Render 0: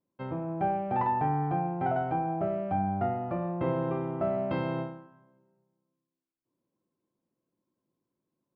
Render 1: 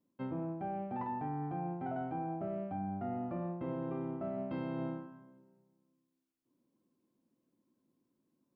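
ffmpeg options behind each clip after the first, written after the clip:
ffmpeg -i in.wav -af "equalizer=frequency=250:width=2.2:gain=10,areverse,acompressor=threshold=-35dB:ratio=12,areverse" out.wav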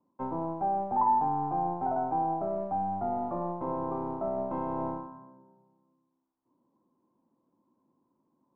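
ffmpeg -i in.wav -filter_complex "[0:a]lowpass=frequency=960:width_type=q:width=4.9,acrossover=split=280[link_01][link_02];[link_01]aeval=exprs='clip(val(0),-1,0.0015)':channel_layout=same[link_03];[link_03][link_02]amix=inputs=2:normalize=0,volume=3.5dB" out.wav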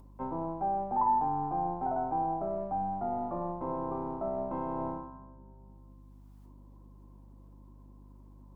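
ffmpeg -i in.wav -af "acompressor=mode=upward:threshold=-49dB:ratio=2.5,aeval=exprs='val(0)+0.00316*(sin(2*PI*50*n/s)+sin(2*PI*2*50*n/s)/2+sin(2*PI*3*50*n/s)/3+sin(2*PI*4*50*n/s)/4+sin(2*PI*5*50*n/s)/5)':channel_layout=same,volume=-2dB" out.wav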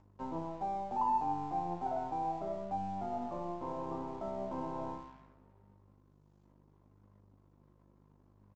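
ffmpeg -i in.wav -af "aresample=16000,aeval=exprs='sgn(val(0))*max(abs(val(0))-0.00178,0)':channel_layout=same,aresample=44100,flanger=delay=9.8:depth=4.6:regen=61:speed=0.7:shape=sinusoidal" out.wav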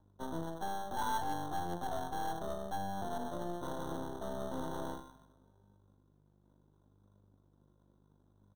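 ffmpeg -i in.wav -filter_complex "[0:a]aeval=exprs='0.0794*(cos(1*acos(clip(val(0)/0.0794,-1,1)))-cos(1*PI/2))+0.0126*(cos(8*acos(clip(val(0)/0.0794,-1,1)))-cos(8*PI/2))':channel_layout=same,acrossover=split=350|1000[link_01][link_02][link_03];[link_03]acrusher=samples=18:mix=1:aa=0.000001[link_04];[link_01][link_02][link_04]amix=inputs=3:normalize=0,volume=-3dB" out.wav

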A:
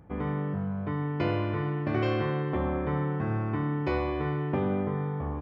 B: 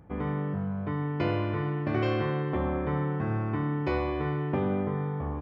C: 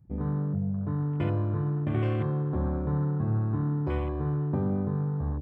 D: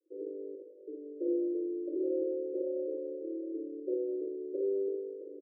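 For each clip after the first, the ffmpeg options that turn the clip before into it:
ffmpeg -i in.wav -af anull out.wav
ffmpeg -i in.wav -af "afwtdn=0.0158,bass=frequency=250:gain=10,treble=frequency=4000:gain=8,volume=-5.5dB" out.wav
ffmpeg -i in.wav -filter_complex "[0:a]asuperpass=centerf=420:order=20:qfactor=1.6,asplit=2[link_01][link_02];[link_02]aecho=0:1:54|69:0.668|0.501[link_03];[link_01][link_03]amix=inputs=2:normalize=0,volume=1dB" out.wav

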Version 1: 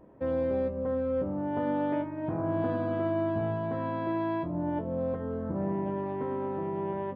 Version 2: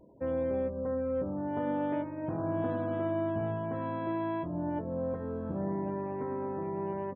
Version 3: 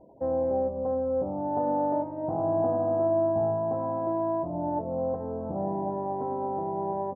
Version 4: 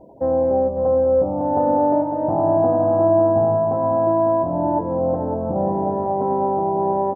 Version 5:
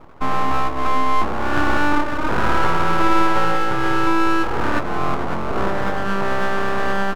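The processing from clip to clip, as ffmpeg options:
ffmpeg -i in.wav -af "afftfilt=real='re*gte(hypot(re,im),0.00251)':imag='im*gte(hypot(re,im),0.00251)':win_size=1024:overlap=0.75,aecho=1:1:1158:0.075,volume=-2.5dB" out.wav
ffmpeg -i in.wav -af "lowpass=frequency=780:width_type=q:width=4.9" out.wav
ffmpeg -i in.wav -af "aecho=1:1:551:0.398,volume=8.5dB" out.wav
ffmpeg -i in.wav -af "aeval=exprs='abs(val(0))':channel_layout=same,volume=3dB" out.wav

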